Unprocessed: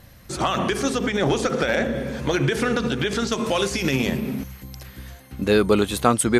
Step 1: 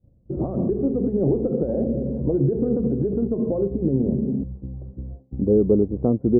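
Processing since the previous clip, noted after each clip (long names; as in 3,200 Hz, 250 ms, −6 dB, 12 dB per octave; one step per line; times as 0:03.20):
downward expander −37 dBFS
inverse Chebyshev low-pass filter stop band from 2,900 Hz, stop band 80 dB
in parallel at 0 dB: downward compressor, threshold −30 dBFS, peak gain reduction 15.5 dB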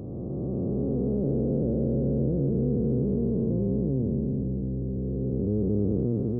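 spectrum smeared in time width 1,110 ms
parametric band 110 Hz +7.5 dB 1.4 octaves
level −3 dB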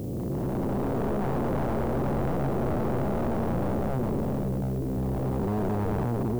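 wavefolder on the positive side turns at −28.5 dBFS
background noise blue −58 dBFS
soft clipping −24.5 dBFS, distortion −12 dB
level +4 dB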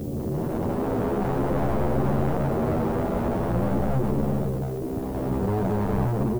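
barber-pole flanger 10.9 ms +0.46 Hz
level +6 dB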